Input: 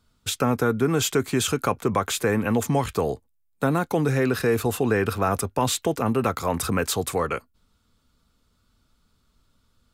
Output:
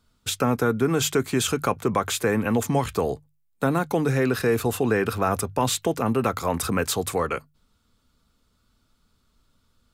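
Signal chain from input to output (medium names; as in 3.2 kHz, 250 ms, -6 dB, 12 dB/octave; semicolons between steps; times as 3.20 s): hum notches 50/100/150 Hz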